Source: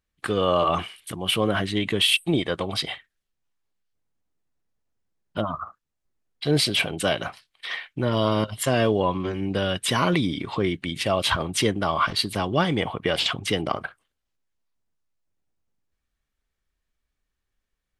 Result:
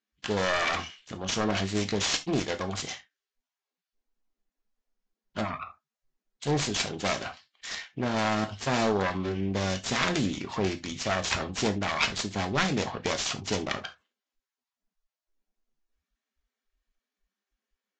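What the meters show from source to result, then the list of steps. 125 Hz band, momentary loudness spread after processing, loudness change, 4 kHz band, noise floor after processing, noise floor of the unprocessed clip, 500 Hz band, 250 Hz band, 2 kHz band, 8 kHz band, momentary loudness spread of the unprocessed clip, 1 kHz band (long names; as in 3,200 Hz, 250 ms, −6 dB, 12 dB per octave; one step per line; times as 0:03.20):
−5.5 dB, 10 LU, −5.0 dB, −7.0 dB, below −85 dBFS, −81 dBFS, −6.0 dB, −4.5 dB, −3.0 dB, −0.5 dB, 11 LU, −5.0 dB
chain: phase distortion by the signal itself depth 0.65 ms
reverb whose tail is shaped and stops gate 100 ms falling, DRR 7 dB
level −4.5 dB
Ogg Vorbis 48 kbit/s 16,000 Hz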